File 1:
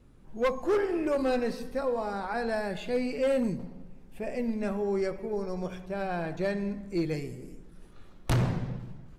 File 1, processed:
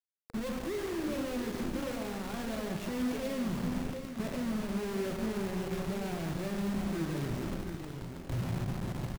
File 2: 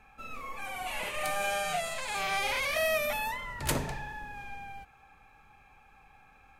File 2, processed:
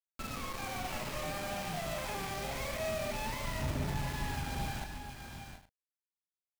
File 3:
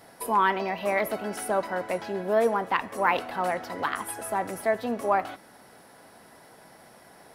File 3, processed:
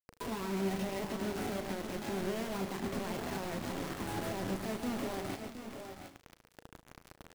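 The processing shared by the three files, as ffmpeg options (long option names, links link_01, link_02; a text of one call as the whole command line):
ffmpeg -i in.wav -filter_complex "[0:a]agate=range=-33dB:threshold=-53dB:ratio=3:detection=peak,acrossover=split=470|2000[link_01][link_02][link_03];[link_01]acompressor=threshold=-31dB:ratio=4[link_04];[link_02]acompressor=threshold=-40dB:ratio=4[link_05];[link_03]acompressor=threshold=-41dB:ratio=4[link_06];[link_04][link_05][link_06]amix=inputs=3:normalize=0,highpass=frequency=250:poles=1,aemphasis=mode=reproduction:type=riaa,aresample=22050,aresample=44100,acompressor=threshold=-36dB:ratio=5,alimiter=level_in=10.5dB:limit=-24dB:level=0:latency=1:release=70,volume=-10.5dB,acrusher=bits=6:mix=0:aa=0.000001,lowshelf=frequency=420:gain=7.5,bandreject=frequency=470:width=12,asplit=2[link_07][link_08];[link_08]adelay=36,volume=-11.5dB[link_09];[link_07][link_09]amix=inputs=2:normalize=0,aecho=1:1:77|140|589|717|740|816:0.112|0.355|0.158|0.335|0.237|0.112" out.wav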